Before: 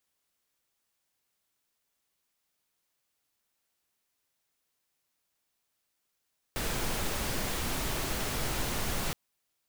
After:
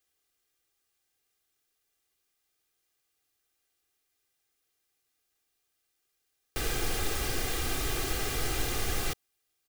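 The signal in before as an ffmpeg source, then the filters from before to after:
-f lavfi -i "anoisesrc=color=pink:amplitude=0.129:duration=2.57:sample_rate=44100:seed=1"
-af "equalizer=frequency=940:width_type=o:width=0.25:gain=-10,aecho=1:1:2.5:0.57"

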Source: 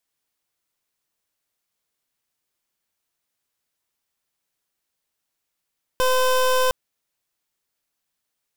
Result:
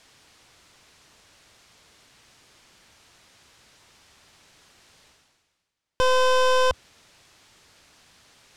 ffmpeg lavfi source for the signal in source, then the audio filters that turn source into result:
-f lavfi -i "aevalsrc='0.119*(2*lt(mod(512*t,1),0.24)-1)':duration=0.71:sample_rate=44100"
-af "lowpass=6000,equalizer=frequency=79:width_type=o:width=1.6:gain=5.5,areverse,acompressor=mode=upward:threshold=-34dB:ratio=2.5,areverse"

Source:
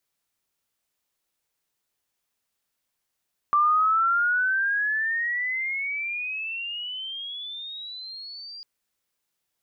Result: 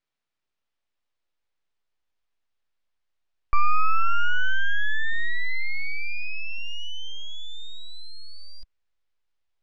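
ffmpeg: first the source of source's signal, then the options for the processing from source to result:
-f lavfi -i "aevalsrc='pow(10,(-16.5-21*t/5.1)/20)*sin(2*PI*1170*5.1/(24.5*log(2)/12)*(exp(24.5*log(2)/12*t/5.1)-1))':duration=5.1:sample_rate=44100"
-af "aeval=exprs='if(lt(val(0),0),0.251*val(0),val(0))':channel_layout=same,lowpass=3900,asubboost=boost=7.5:cutoff=58"

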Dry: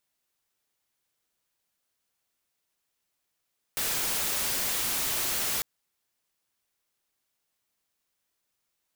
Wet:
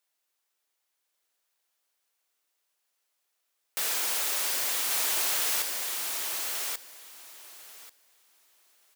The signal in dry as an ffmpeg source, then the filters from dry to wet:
-f lavfi -i "anoisesrc=color=white:amplitude=0.0614:duration=1.85:sample_rate=44100:seed=1"
-filter_complex "[0:a]highpass=420,asplit=2[link_01][link_02];[link_02]aecho=0:1:1137|2274|3411:0.668|0.107|0.0171[link_03];[link_01][link_03]amix=inputs=2:normalize=0"

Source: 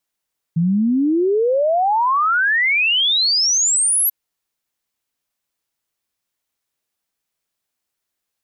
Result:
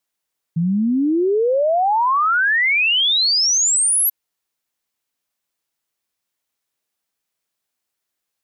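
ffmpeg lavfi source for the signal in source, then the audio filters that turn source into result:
-f lavfi -i "aevalsrc='0.211*clip(min(t,3.54-t)/0.01,0,1)*sin(2*PI*160*3.54/log(12000/160)*(exp(log(12000/160)*t/3.54)-1))':duration=3.54:sample_rate=44100"
-af "lowshelf=frequency=110:gain=-6"

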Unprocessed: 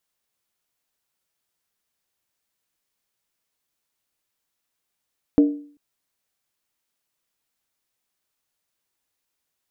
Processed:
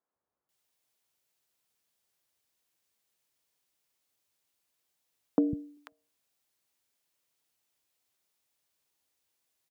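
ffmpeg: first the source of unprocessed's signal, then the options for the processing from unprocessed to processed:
-f lavfi -i "aevalsrc='0.376*pow(10,-3*t/0.48)*sin(2*PI*291*t)+0.112*pow(10,-3*t/0.38)*sin(2*PI*463.9*t)+0.0335*pow(10,-3*t/0.328)*sin(2*PI*621.6*t)+0.01*pow(10,-3*t/0.317)*sin(2*PI*668.1*t)+0.00299*pow(10,-3*t/0.295)*sin(2*PI*772*t)':duration=0.39:sample_rate=44100"
-filter_complex "[0:a]highpass=63,acompressor=threshold=-21dB:ratio=6,acrossover=split=190|1400[link_01][link_02][link_03];[link_01]adelay=150[link_04];[link_03]adelay=490[link_05];[link_04][link_02][link_05]amix=inputs=3:normalize=0"

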